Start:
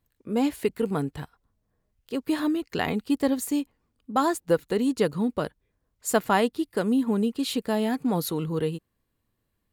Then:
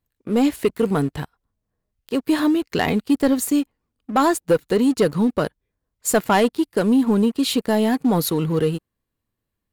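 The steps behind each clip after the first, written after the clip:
leveller curve on the samples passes 2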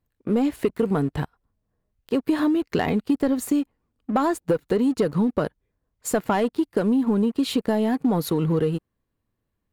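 downward compressor, threshold −21 dBFS, peak gain reduction 9 dB
high-shelf EQ 2,600 Hz −9 dB
level +3 dB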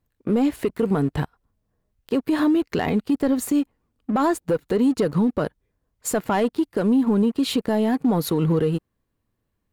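brickwall limiter −15.5 dBFS, peak gain reduction 6 dB
level +2.5 dB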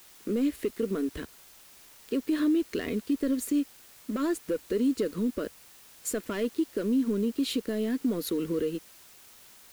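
phaser with its sweep stopped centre 340 Hz, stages 4
bit-depth reduction 8 bits, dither triangular
level −5.5 dB

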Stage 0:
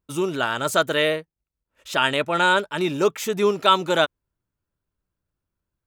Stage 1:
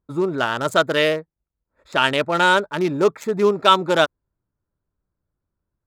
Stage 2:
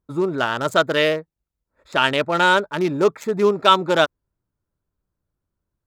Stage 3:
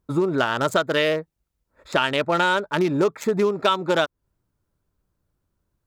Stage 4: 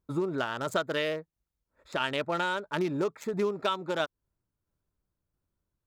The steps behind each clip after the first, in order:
adaptive Wiener filter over 15 samples; level +3 dB
dynamic equaliser 9,900 Hz, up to −4 dB, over −44 dBFS, Q 1.6
downward compressor 6 to 1, threshold −23 dBFS, peak gain reduction 13.5 dB; level +5.5 dB
shaped tremolo saw down 1.5 Hz, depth 35%; level −7.5 dB

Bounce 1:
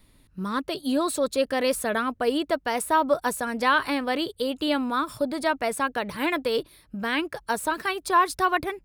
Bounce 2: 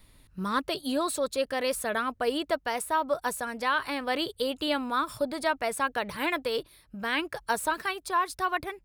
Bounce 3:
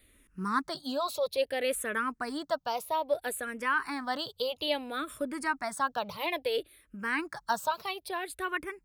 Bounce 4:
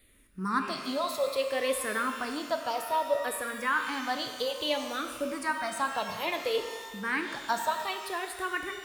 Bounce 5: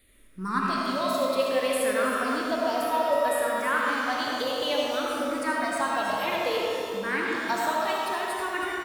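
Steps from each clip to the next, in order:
parametric band 260 Hz −5 dB 1.5 octaves; speech leveller 0.5 s; level −2.5 dB
low-shelf EQ 87 Hz −7.5 dB; frequency shifter mixed with the dry sound −0.6 Hz
reverb with rising layers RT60 1.5 s, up +12 semitones, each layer −8 dB, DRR 5.5 dB
on a send: single-tap delay 320 ms −10 dB; on the sum: comb and all-pass reverb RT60 2.5 s, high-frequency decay 0.3×, pre-delay 35 ms, DRR −1.5 dB

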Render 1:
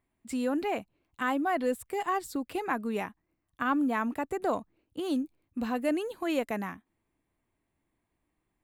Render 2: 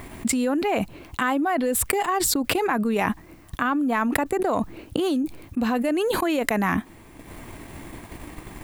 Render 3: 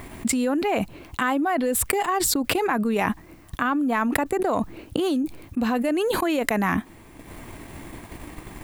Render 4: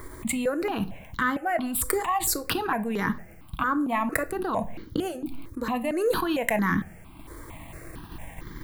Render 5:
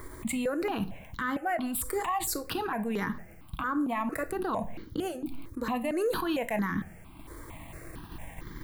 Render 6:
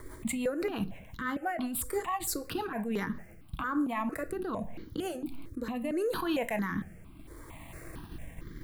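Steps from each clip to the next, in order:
transient designer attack +5 dB, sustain −8 dB; envelope flattener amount 100%
no processing that can be heard
rectangular room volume 460 cubic metres, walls furnished, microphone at 0.61 metres; step-sequenced phaser 4.4 Hz 730–2,600 Hz
brickwall limiter −19 dBFS, peak gain reduction 11 dB; level −2.5 dB
rotating-speaker cabinet horn 6 Hz, later 0.75 Hz, at 0:02.72

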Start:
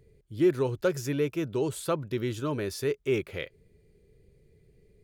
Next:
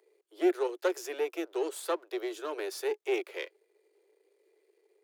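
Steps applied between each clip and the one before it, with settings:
gain on one half-wave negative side −7 dB
Butterworth high-pass 330 Hz 96 dB per octave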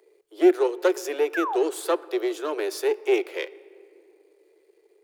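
low-shelf EQ 210 Hz +12 dB
sound drawn into the spectrogram fall, 0:01.34–0:01.57, 680–1,800 Hz −34 dBFS
on a send at −19 dB: convolution reverb RT60 2.6 s, pre-delay 4 ms
on the sum: level +6 dB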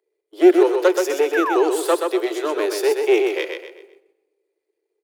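noise gate −49 dBFS, range −21 dB
on a send: repeating echo 127 ms, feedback 34%, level −5 dB
on the sum: level +5 dB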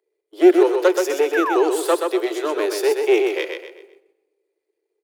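no processing that can be heard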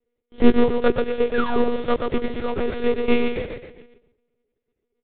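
gap after every zero crossing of 0.14 ms
one-pitch LPC vocoder at 8 kHz 240 Hz
low-shelf EQ 380 Hz +3 dB
level −3 dB

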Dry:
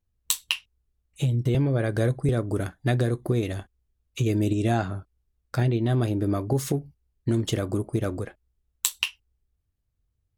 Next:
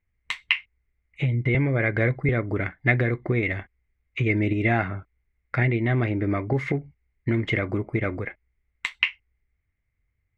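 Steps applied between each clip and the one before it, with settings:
low-pass with resonance 2,100 Hz, resonance Q 14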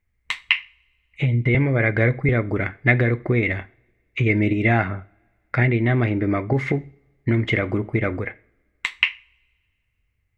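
coupled-rooms reverb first 0.42 s, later 2.1 s, from −26 dB, DRR 16 dB
level +3.5 dB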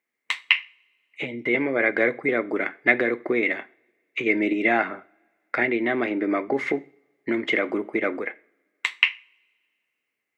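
high-pass filter 270 Hz 24 dB per octave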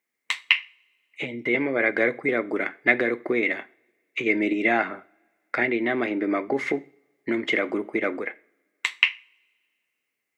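bass and treble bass +1 dB, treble +5 dB
level −1 dB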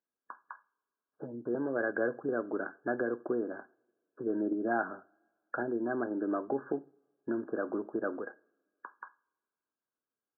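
linear-phase brick-wall low-pass 1,700 Hz
level −7.5 dB

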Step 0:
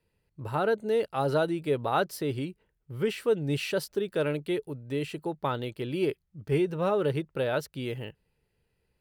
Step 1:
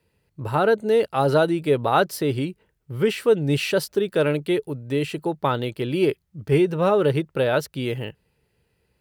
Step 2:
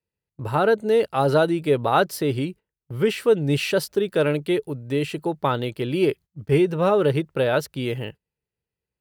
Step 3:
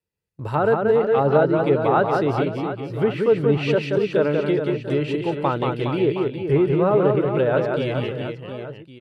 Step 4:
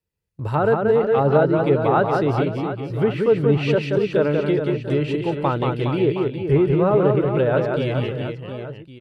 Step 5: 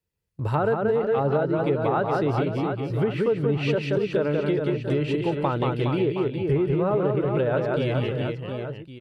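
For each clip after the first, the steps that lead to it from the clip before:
high-pass filter 50 Hz; level +7.5 dB
noise gate −38 dBFS, range −20 dB
treble cut that deepens with the level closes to 1,700 Hz, closed at −17 dBFS; reverse bouncing-ball delay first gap 180 ms, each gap 1.3×, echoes 5
low-shelf EQ 86 Hz +11 dB
downward compressor 4 to 1, threshold −20 dBFS, peak gain reduction 8.5 dB

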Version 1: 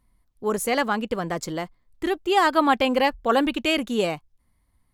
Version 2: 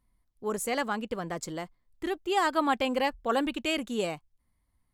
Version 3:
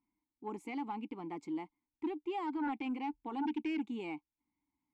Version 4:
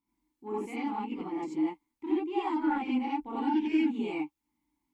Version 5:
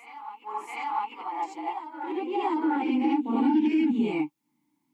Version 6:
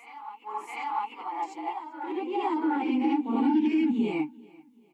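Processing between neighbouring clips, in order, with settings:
dynamic equaliser 7,900 Hz, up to +6 dB, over −53 dBFS, Q 3.1; level −7 dB
brickwall limiter −22 dBFS, peak gain reduction 9 dB; formant filter u; sine wavefolder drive 7 dB, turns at −25.5 dBFS; level −5 dB
reverb whose tail is shaped and stops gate 110 ms rising, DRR −7.5 dB; level −2 dB
backwards echo 699 ms −12 dB; brickwall limiter −24.5 dBFS, peak gain reduction 6.5 dB; high-pass filter sweep 1,000 Hz → 160 Hz, 0:01.09–0:04.13; level +4 dB
repeating echo 389 ms, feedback 39%, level −24 dB; level −1 dB

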